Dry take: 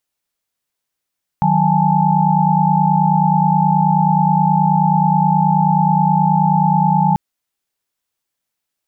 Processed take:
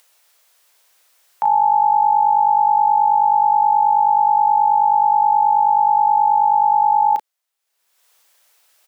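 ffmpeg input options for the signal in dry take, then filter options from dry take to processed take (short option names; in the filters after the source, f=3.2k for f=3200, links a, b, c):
-f lavfi -i "aevalsrc='0.15*(sin(2*PI*155.56*t)+sin(2*PI*185*t)+sin(2*PI*830.61*t)+sin(2*PI*880*t))':d=5.74:s=44100"
-filter_complex "[0:a]highpass=f=470:w=0.5412,highpass=f=470:w=1.3066,acompressor=mode=upward:threshold=-41dB:ratio=2.5,asplit=2[a][b];[b]adelay=35,volume=-8dB[c];[a][c]amix=inputs=2:normalize=0"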